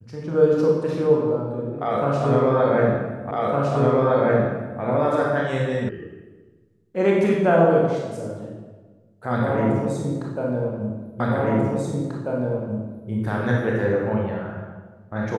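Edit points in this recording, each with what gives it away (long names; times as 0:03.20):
0:03.31: the same again, the last 1.51 s
0:05.89: cut off before it has died away
0:11.20: the same again, the last 1.89 s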